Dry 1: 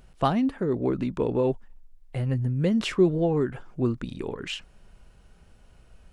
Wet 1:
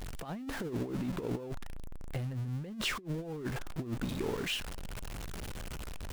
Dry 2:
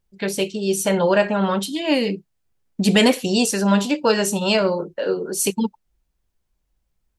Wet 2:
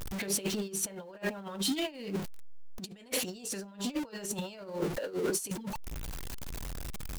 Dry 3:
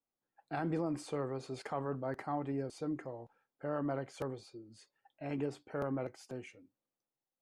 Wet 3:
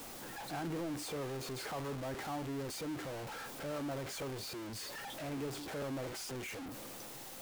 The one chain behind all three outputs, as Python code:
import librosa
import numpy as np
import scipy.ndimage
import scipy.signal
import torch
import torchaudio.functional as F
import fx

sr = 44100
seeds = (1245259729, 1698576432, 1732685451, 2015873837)

y = x + 0.5 * 10.0 ** (-30.0 / 20.0) * np.sign(x)
y = fx.over_compress(y, sr, threshold_db=-26.0, ratio=-0.5)
y = y * 10.0 ** (-8.5 / 20.0)